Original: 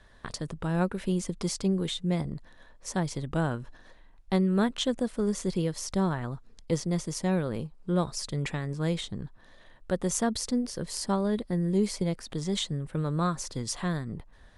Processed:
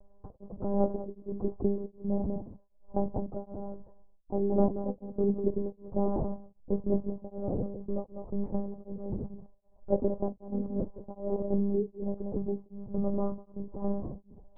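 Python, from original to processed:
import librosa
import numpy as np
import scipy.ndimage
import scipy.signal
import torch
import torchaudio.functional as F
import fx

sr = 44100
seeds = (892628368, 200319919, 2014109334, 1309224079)

y = fx.rattle_buzz(x, sr, strikes_db=-34.0, level_db=-27.0)
y = scipy.signal.sosfilt(scipy.signal.butter(6, 810.0, 'lowpass', fs=sr, output='sos'), y)
y = fx.peak_eq(y, sr, hz=180.0, db=-5.0, octaves=1.0)
y = fx.doubler(y, sr, ms=40.0, db=-13.5)
y = y + 10.0 ** (-8.5 / 20.0) * np.pad(y, (int(189 * sr / 1000.0), 0))[:len(y)]
y = fx.lpc_monotone(y, sr, seeds[0], pitch_hz=200.0, order=16)
y = y * np.abs(np.cos(np.pi * 1.3 * np.arange(len(y)) / sr))
y = y * librosa.db_to_amplitude(4.0)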